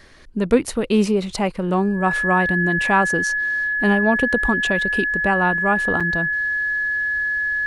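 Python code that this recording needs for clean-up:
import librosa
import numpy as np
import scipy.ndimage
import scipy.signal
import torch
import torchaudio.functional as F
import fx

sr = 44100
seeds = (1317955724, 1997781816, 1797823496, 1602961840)

y = fx.notch(x, sr, hz=1700.0, q=30.0)
y = fx.fix_interpolate(y, sr, at_s=(6.0,), length_ms=6.1)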